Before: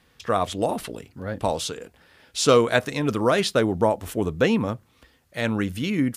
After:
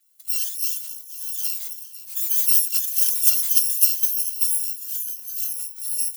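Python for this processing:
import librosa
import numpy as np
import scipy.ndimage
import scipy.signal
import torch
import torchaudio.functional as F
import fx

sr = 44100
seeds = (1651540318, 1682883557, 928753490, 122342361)

p1 = fx.bit_reversed(x, sr, seeds[0], block=256)
p2 = scipy.signal.lfilter([1.0, -0.97], [1.0], p1)
p3 = p2 + fx.echo_feedback(p2, sr, ms=499, feedback_pct=54, wet_db=-14.5, dry=0)
p4 = fx.filter_sweep_highpass(p3, sr, from_hz=300.0, to_hz=130.0, start_s=1.15, end_s=2.68, q=2.6)
p5 = fx.echo_pitch(p4, sr, ms=98, semitones=2, count=2, db_per_echo=-3.0)
p6 = fx.transient(p5, sr, attack_db=9, sustain_db=5, at=(2.93, 4.21))
p7 = fx.ensemble(p6, sr, at=(5.44, 5.85))
y = F.gain(torch.from_numpy(p7), -5.5).numpy()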